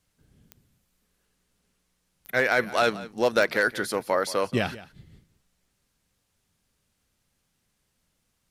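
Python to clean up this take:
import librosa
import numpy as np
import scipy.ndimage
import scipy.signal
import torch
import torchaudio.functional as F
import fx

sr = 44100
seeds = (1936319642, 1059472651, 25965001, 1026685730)

y = fx.fix_declick_ar(x, sr, threshold=10.0)
y = fx.fix_echo_inverse(y, sr, delay_ms=176, level_db=-17.5)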